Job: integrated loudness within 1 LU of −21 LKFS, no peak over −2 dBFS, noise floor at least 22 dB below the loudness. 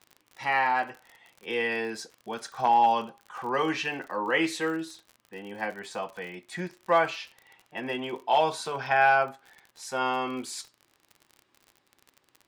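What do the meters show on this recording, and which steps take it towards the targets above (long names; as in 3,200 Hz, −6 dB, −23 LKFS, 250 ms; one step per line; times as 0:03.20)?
crackle rate 50 per second; integrated loudness −28.0 LKFS; sample peak −10.5 dBFS; target loudness −21.0 LKFS
→ click removal
level +7 dB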